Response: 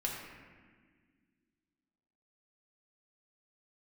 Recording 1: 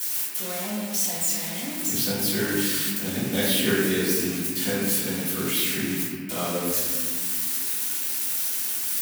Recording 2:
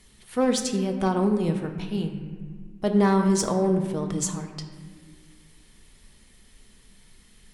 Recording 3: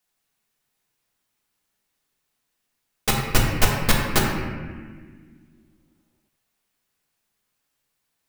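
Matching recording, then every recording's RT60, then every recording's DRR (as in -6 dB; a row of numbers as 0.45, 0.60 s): 3; 1.6, 1.7, 1.6 s; -11.5, 4.0, -3.0 dB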